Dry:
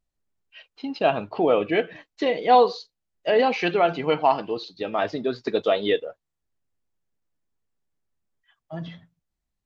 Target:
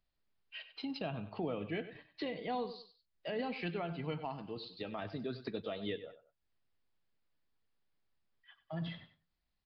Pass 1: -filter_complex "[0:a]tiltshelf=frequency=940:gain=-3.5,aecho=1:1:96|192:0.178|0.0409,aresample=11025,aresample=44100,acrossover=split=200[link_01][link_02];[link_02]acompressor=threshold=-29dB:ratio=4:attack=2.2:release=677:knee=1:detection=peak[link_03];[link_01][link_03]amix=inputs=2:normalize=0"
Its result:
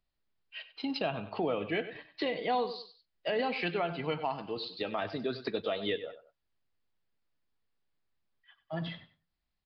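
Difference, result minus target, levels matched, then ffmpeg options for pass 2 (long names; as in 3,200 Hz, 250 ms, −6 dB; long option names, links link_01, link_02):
downward compressor: peak gain reduction −8.5 dB
-filter_complex "[0:a]tiltshelf=frequency=940:gain=-3.5,aecho=1:1:96|192:0.178|0.0409,aresample=11025,aresample=44100,acrossover=split=200[link_01][link_02];[link_02]acompressor=threshold=-40.5dB:ratio=4:attack=2.2:release=677:knee=1:detection=peak[link_03];[link_01][link_03]amix=inputs=2:normalize=0"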